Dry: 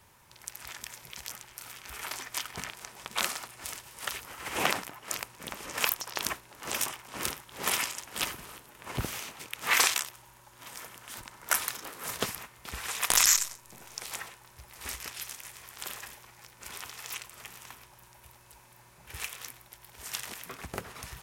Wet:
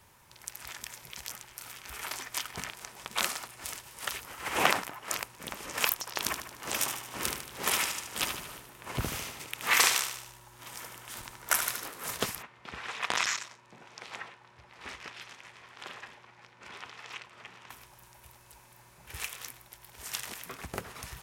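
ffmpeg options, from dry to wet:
ffmpeg -i in.wav -filter_complex "[0:a]asettb=1/sr,asplit=3[link_01][link_02][link_03];[link_01]atrim=end=4.434[link_04];[link_02]atrim=start=4.43:end=5.23,asetpts=PTS-STARTPTS,afade=type=in:duration=0.004:curve=qsin,afade=type=out:start_time=0.796:duration=0.004:curve=qsin,equalizer=frequency=1100:width_type=o:width=2.6:gain=4[link_05];[link_03]atrim=start=5.226[link_06];[link_04][link_05]acrossfade=duration=0.004:curve1=hsin:curve2=qsin[link_07];[link_07][link_06]acrossfade=duration=0.004:curve1=qsin:curve2=hsin,asettb=1/sr,asplit=3[link_08][link_09][link_10];[link_08]atrim=end=6.184[link_11];[link_09]atrim=start=6.18:end=11.87,asetpts=PTS-STARTPTS,afade=type=in:duration=0.004:curve=qsin,afade=type=out:start_time=5.686:duration=0.004:curve=qsin,aecho=1:1:75|150|225|300|375|450:0.398|0.211|0.112|0.0593|0.0314|0.0166,atrim=end_sample=250929[link_12];[link_10]atrim=start=11.866[link_13];[link_11][link_12]acrossfade=duration=0.004:curve1=hsin:curve2=qsin[link_14];[link_14][link_13]acrossfade=duration=0.004:curve1=qsin:curve2=hsin,asplit=3[link_15][link_16][link_17];[link_15]afade=type=out:start_time=12.41:duration=0.02[link_18];[link_16]highpass=120,lowpass=3300,afade=type=in:start_time=12.41:duration=0.02,afade=type=out:start_time=17.69:duration=0.02[link_19];[link_17]afade=type=in:start_time=17.69:duration=0.02[link_20];[link_18][link_19][link_20]amix=inputs=3:normalize=0" out.wav

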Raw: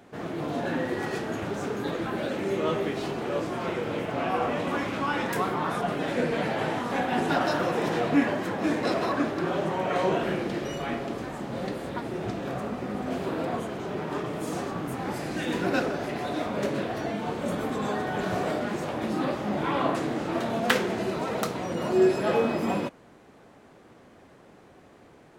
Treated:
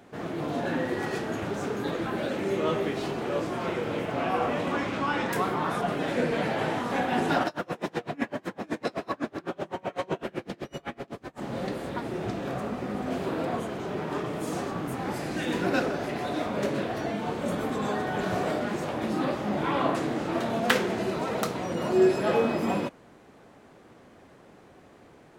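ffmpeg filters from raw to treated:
ffmpeg -i in.wav -filter_complex "[0:a]asettb=1/sr,asplit=3[link_01][link_02][link_03];[link_01]atrim=end=4.684[link_04];[link_02]atrim=start=4.68:end=5.32,asetpts=PTS-STARTPTS,afade=type=in:duration=0.004:curve=qsin,afade=type=out:start_time=0.636:duration=0.004:curve=qsin,equalizer=frequency=12000:width=1.6:gain=-9[link_05];[link_03]atrim=start=5.316[link_06];[link_04][link_05]acrossfade=duration=0.004:curve1=hsin:curve2=qsin[link_07];[link_07][link_06]acrossfade=duration=0.004:curve1=qsin:curve2=hsin,asplit=3[link_08][link_09][link_10];[link_08]afade=type=out:start_time=7.43:duration=0.02[link_11];[link_09]aeval=exprs='val(0)*pow(10,-32*(0.5-0.5*cos(2*PI*7.9*n/s))/20)':channel_layout=same,afade=type=in:start_time=7.43:duration=0.02,afade=type=out:start_time=11.4:duration=0.02[link_12];[link_10]afade=type=in:start_time=11.4:duration=0.02[link_13];[link_11][link_12][link_13]amix=inputs=3:normalize=0" out.wav

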